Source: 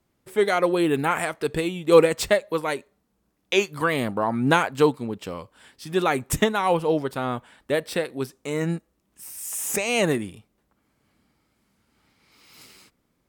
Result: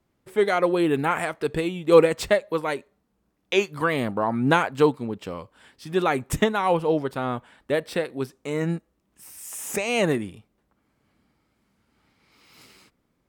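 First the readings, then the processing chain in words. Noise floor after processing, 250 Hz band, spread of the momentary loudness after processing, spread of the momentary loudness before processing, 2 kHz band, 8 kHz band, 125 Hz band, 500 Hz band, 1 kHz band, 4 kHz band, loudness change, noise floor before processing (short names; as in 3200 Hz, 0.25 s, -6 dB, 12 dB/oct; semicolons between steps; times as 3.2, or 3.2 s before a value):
-72 dBFS, 0.0 dB, 13 LU, 13 LU, -1.0 dB, -5.0 dB, 0.0 dB, 0.0 dB, -0.5 dB, -2.5 dB, -0.5 dB, -72 dBFS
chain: high shelf 4400 Hz -6.5 dB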